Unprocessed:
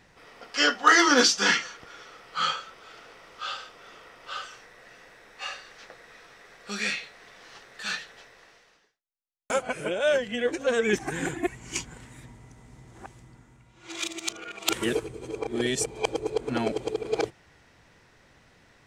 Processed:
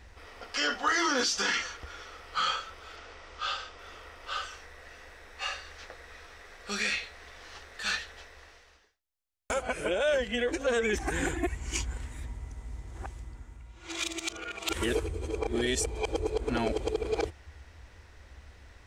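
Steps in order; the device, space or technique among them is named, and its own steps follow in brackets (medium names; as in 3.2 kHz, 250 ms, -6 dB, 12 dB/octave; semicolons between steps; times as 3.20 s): car stereo with a boomy subwoofer (resonant low shelf 100 Hz +11 dB, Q 3; peak limiter -20 dBFS, peak gain reduction 11.5 dB); 2.96–3.79 s: low-pass 8 kHz 24 dB/octave; trim +1 dB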